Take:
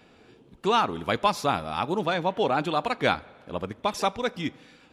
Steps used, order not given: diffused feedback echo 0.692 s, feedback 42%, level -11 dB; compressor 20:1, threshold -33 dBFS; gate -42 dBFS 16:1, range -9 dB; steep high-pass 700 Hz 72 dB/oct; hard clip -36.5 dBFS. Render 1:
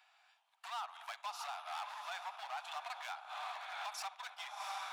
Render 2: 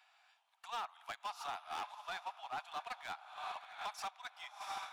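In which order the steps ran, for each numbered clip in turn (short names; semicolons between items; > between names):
diffused feedback echo > compressor > gate > hard clip > steep high-pass; diffused feedback echo > compressor > steep high-pass > hard clip > gate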